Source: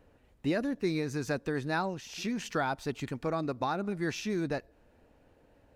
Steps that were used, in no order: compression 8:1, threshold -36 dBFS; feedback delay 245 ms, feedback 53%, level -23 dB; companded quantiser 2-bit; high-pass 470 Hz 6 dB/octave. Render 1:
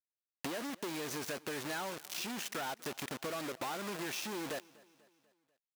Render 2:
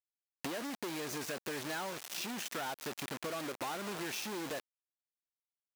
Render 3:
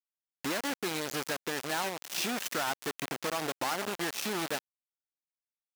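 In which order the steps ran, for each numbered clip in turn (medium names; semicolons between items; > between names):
companded quantiser > high-pass > compression > feedback delay; feedback delay > companded quantiser > high-pass > compression; feedback delay > compression > companded quantiser > high-pass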